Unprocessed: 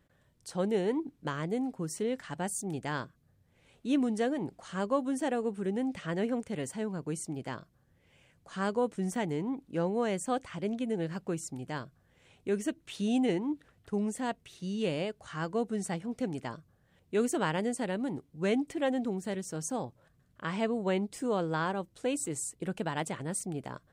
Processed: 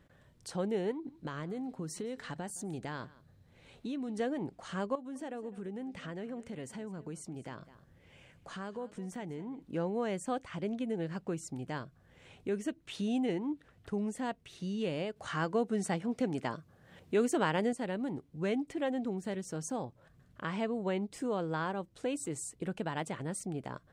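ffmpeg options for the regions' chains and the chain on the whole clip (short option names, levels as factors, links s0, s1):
-filter_complex "[0:a]asettb=1/sr,asplit=3[s0][s1][s2];[s0]atrim=end=0.914[s3];[s1]atrim=start=0.91:end=4.2,asetpts=PTS-STARTPTS,afade=t=in:d=0.004:c=qsin,afade=t=out:st=3.286:d=0.004:c=qsin,equalizer=f=4000:w=7.8:g=7.5,acompressor=threshold=0.0178:ratio=4:attack=3.2:release=140:knee=1:detection=peak,aecho=1:1:166:0.0708,atrim=end_sample=145089[s4];[s2]atrim=start=4.196[s5];[s3][s4]acrossfade=d=0.004:c1=hsin:c2=qsin[s6];[s6][s5]acrossfade=d=0.004:c1=qsin:c2=hsin,asettb=1/sr,asplit=3[s7][s8][s9];[s7]atrim=end=4.954[s10];[s8]atrim=start=4.95:end=9.63,asetpts=PTS-STARTPTS,afade=t=in:d=0.004:c=qsin,afade=t=out:st=4.676:d=0.004:c=qsin,acompressor=threshold=0.00501:ratio=2:attack=3.2:release=140:knee=1:detection=peak,aecho=1:1:206:0.119,atrim=end_sample=206388[s11];[s9]atrim=start=9.626[s12];[s10][s11]acrossfade=d=0.004:c1=hsin:c2=qsin[s13];[s13][s12]acrossfade=d=0.004:c1=qsin:c2=hsin,asettb=1/sr,asplit=3[s14][s15][s16];[s14]atrim=end=15.164[s17];[s15]atrim=start=15.16:end=17.73,asetpts=PTS-STARTPTS,afade=t=in:d=0.004:c=qsin,afade=t=out:st=2.566:d=0.004:c=qsin,highpass=f=140:p=1,acontrast=69[s18];[s16]atrim=start=17.726[s19];[s17][s18]acrossfade=d=0.004:c1=hsin:c2=qsin[s20];[s20][s19]acrossfade=d=0.004:c1=qsin:c2=hsin,highshelf=f=7000:g=-8,acompressor=threshold=0.00251:ratio=1.5,volume=1.88"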